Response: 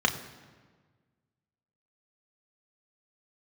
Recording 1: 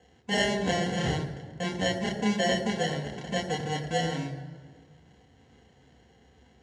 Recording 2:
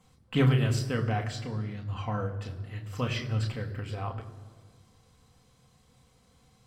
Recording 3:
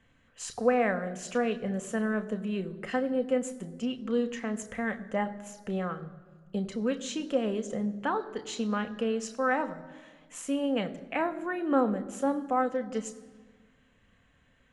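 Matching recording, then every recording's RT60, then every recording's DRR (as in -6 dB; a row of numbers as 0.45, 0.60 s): 2; 1.5, 1.5, 1.5 s; -3.5, 3.0, 7.5 dB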